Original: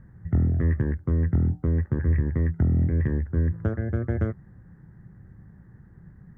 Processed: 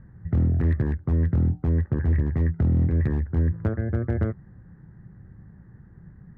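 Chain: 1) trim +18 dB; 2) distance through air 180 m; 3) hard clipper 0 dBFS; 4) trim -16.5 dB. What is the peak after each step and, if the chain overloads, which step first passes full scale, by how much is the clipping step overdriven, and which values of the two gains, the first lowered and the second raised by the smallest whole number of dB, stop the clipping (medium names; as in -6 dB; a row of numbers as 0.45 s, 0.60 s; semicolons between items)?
+8.0 dBFS, +8.0 dBFS, 0.0 dBFS, -16.5 dBFS; step 1, 8.0 dB; step 1 +10 dB, step 4 -8.5 dB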